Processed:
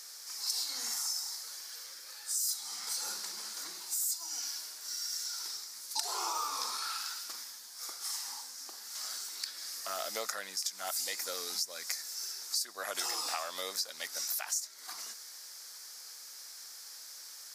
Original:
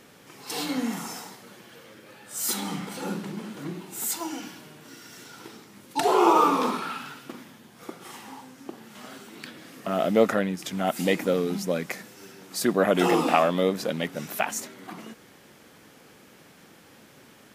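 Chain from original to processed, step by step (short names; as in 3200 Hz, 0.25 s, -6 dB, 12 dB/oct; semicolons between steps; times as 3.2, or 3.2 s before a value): HPF 1300 Hz 12 dB/oct; resonant high shelf 3800 Hz +9.5 dB, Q 3; compressor 5:1, threshold -33 dBFS, peak gain reduction 18.5 dB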